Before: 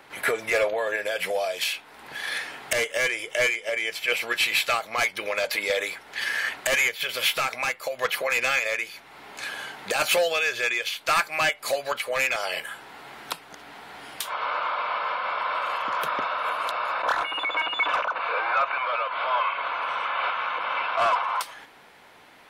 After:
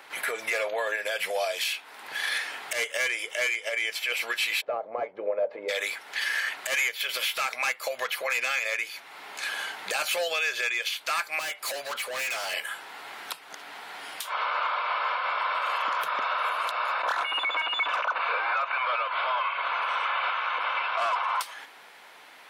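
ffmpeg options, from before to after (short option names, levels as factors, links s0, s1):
-filter_complex "[0:a]asplit=3[s0][s1][s2];[s0]afade=t=out:st=4.6:d=0.02[s3];[s1]lowpass=f=530:t=q:w=2.1,afade=t=in:st=4.6:d=0.02,afade=t=out:st=5.68:d=0.02[s4];[s2]afade=t=in:st=5.68:d=0.02[s5];[s3][s4][s5]amix=inputs=3:normalize=0,asettb=1/sr,asplit=3[s6][s7][s8];[s6]atrim=end=11.394[s9];[s7]atrim=start=11.39:end=12.54,asetpts=PTS-STARTPTS,afade=t=in:d=0.004:c=qsin,afade=t=out:st=1.146:d=0.004:c=qsin,asoftclip=type=hard:threshold=0.0266[s10];[s8]atrim=start=12.536[s11];[s9][s10]acrossfade=d=0.004:c1=hsin:c2=qsin[s12];[s12][s11]acrossfade=d=0.004:c1=qsin:c2=hsin,highpass=f=820:p=1,alimiter=limit=0.0794:level=0:latency=1:release=194,volume=1.5"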